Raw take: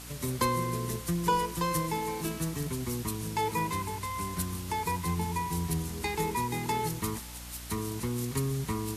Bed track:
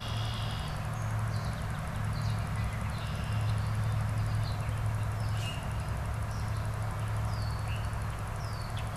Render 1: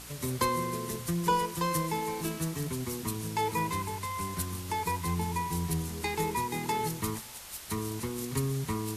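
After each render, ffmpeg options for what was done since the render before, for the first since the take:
-af "bandreject=f=60:t=h:w=4,bandreject=f=120:t=h:w=4,bandreject=f=180:t=h:w=4,bandreject=f=240:t=h:w=4,bandreject=f=300:t=h:w=4"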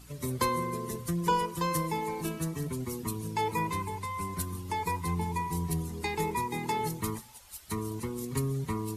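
-af "afftdn=nr=12:nf=-45"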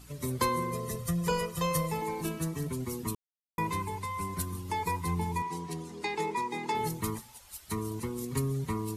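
-filter_complex "[0:a]asettb=1/sr,asplit=3[a][b][c];[a]atrim=end=0.714[d];[b]atrim=start=0.71:end=2.02,asetpts=PTS-STARTPTS,afade=t=in:d=0.004:c=qsin,afade=t=out:st=1.306:d=0.004:c=qsin,aecho=1:1:1.6:0.71,atrim=end_sample=57771[e];[c]atrim=start=2.016[f];[d][e]acrossfade=d=0.004:c1=hsin:c2=qsin[g];[g][f]acrossfade=d=0.004:c1=qsin:c2=hsin,asettb=1/sr,asplit=3[h][i][j];[h]atrim=end=5.424[k];[i]atrim=start=5.42:end=6.75,asetpts=PTS-STARTPTS,afade=t=in:d=0.004:c=qsin,afade=t=out:st=1.326:d=0.004:c=qsin,highpass=240,lowpass=6.9k[l];[j]atrim=start=6.746[m];[k][l]acrossfade=d=0.004:c1=hsin:c2=qsin[n];[n][m]acrossfade=d=0.004:c1=qsin:c2=hsin,asplit=3[o][p][q];[o]atrim=end=3.15,asetpts=PTS-STARTPTS,afade=t=out:st=3.146:d=0.004:c=hsin[r];[p]atrim=start=3.15:end=3.58,asetpts=PTS-STARTPTS,volume=0[s];[q]atrim=start=3.58,asetpts=PTS-STARTPTS,afade=t=in:d=0.004:c=hsin[t];[r][s][t]concat=n=3:v=0:a=1"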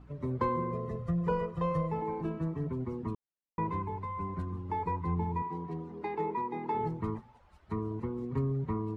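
-af "lowpass=1.2k"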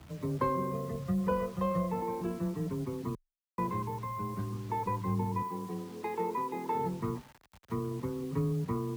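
-af "acrusher=bits=8:mix=0:aa=0.000001,afreqshift=19"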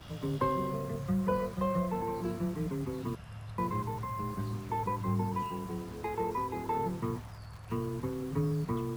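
-filter_complex "[1:a]volume=-13.5dB[a];[0:a][a]amix=inputs=2:normalize=0"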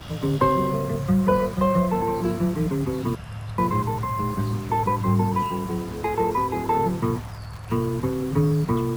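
-af "volume=10.5dB"

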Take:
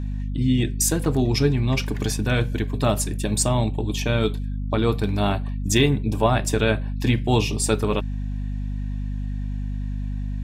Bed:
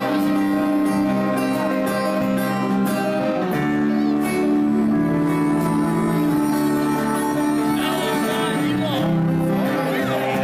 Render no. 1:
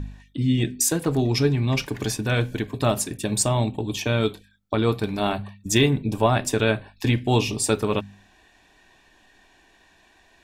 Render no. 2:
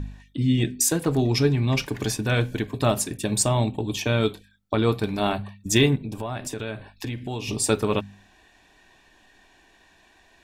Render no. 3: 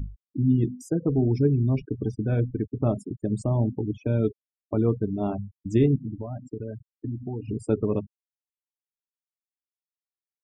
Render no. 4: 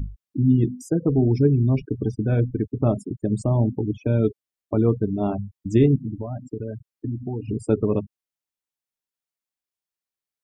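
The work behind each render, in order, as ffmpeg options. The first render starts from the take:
-af "bandreject=f=50:t=h:w=4,bandreject=f=100:t=h:w=4,bandreject=f=150:t=h:w=4,bandreject=f=200:t=h:w=4,bandreject=f=250:t=h:w=4"
-filter_complex "[0:a]asplit=3[a][b][c];[a]afade=t=out:st=5.95:d=0.02[d];[b]acompressor=threshold=-29dB:ratio=4:attack=3.2:release=140:knee=1:detection=peak,afade=t=in:st=5.95:d=0.02,afade=t=out:st=7.47:d=0.02[e];[c]afade=t=in:st=7.47:d=0.02[f];[d][e][f]amix=inputs=3:normalize=0"
-af "afftfilt=real='re*gte(hypot(re,im),0.0794)':imag='im*gte(hypot(re,im),0.0794)':win_size=1024:overlap=0.75,firequalizer=gain_entry='entry(320,0);entry(940,-11);entry(3200,-23);entry(6000,-24)':delay=0.05:min_phase=1"
-af "volume=3.5dB"

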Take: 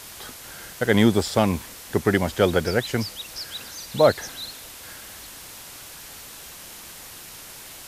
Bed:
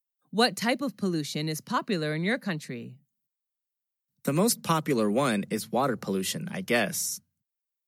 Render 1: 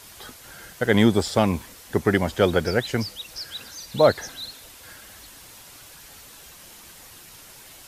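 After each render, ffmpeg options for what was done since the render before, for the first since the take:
-af "afftdn=nr=6:nf=-42"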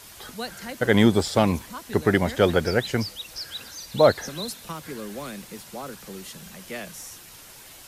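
-filter_complex "[1:a]volume=-10.5dB[a];[0:a][a]amix=inputs=2:normalize=0"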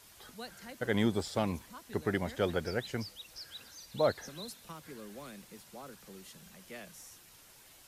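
-af "volume=-12dB"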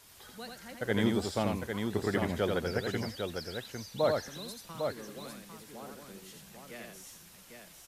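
-af "aecho=1:1:85|802:0.631|0.531"

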